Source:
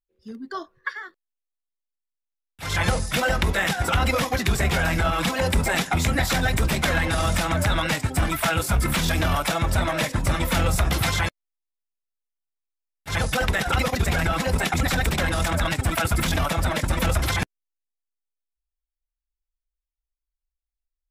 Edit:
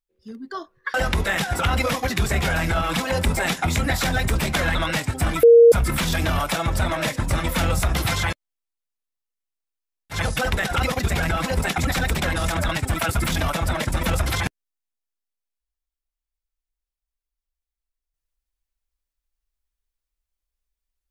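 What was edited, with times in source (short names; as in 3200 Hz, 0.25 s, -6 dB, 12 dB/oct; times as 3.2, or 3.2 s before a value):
0.94–3.23 cut
7.04–7.71 cut
8.39–8.68 bleep 467 Hz -6.5 dBFS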